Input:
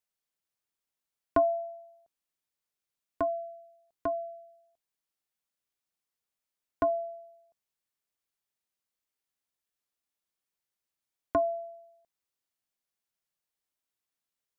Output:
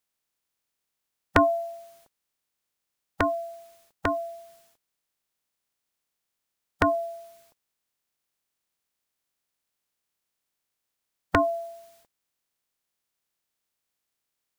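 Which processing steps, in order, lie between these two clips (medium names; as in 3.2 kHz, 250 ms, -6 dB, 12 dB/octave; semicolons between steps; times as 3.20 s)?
spectral peaks clipped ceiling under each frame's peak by 27 dB; trim +6.5 dB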